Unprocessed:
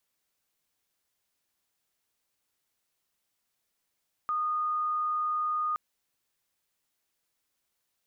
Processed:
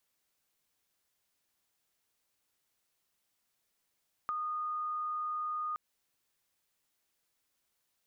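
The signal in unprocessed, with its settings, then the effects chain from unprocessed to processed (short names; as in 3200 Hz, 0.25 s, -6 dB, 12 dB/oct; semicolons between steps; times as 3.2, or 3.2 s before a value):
tone sine 1230 Hz -26.5 dBFS 1.47 s
compressor, threshold -35 dBFS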